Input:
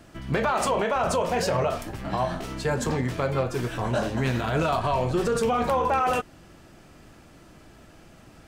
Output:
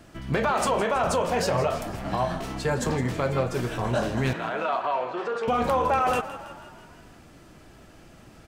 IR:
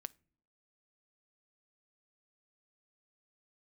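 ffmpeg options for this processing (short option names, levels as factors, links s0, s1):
-filter_complex "[0:a]asettb=1/sr,asplit=3[s0][s1][s2];[s0]atrim=end=4.334[s3];[s1]atrim=start=4.33:end=5.48,asetpts=PTS-STARTPTS,afade=t=in:d=0.004:c=qsin,afade=t=out:st=1.146:d=0.004:c=qsin,highpass=540,lowpass=2600[s4];[s2]atrim=start=5.476[s5];[s3][s4]acrossfade=d=0.004:c1=hsin:c2=qsin[s6];[s6][s5]acrossfade=d=0.004:c1=qsin:c2=hsin,asplit=2[s7][s8];[s8]asplit=6[s9][s10][s11][s12][s13][s14];[s9]adelay=163,afreqshift=37,volume=0.188[s15];[s10]adelay=326,afreqshift=74,volume=0.111[s16];[s11]adelay=489,afreqshift=111,volume=0.0653[s17];[s12]adelay=652,afreqshift=148,volume=0.0389[s18];[s13]adelay=815,afreqshift=185,volume=0.0229[s19];[s14]adelay=978,afreqshift=222,volume=0.0135[s20];[s15][s16][s17][s18][s19][s20]amix=inputs=6:normalize=0[s21];[s7][s21]amix=inputs=2:normalize=0"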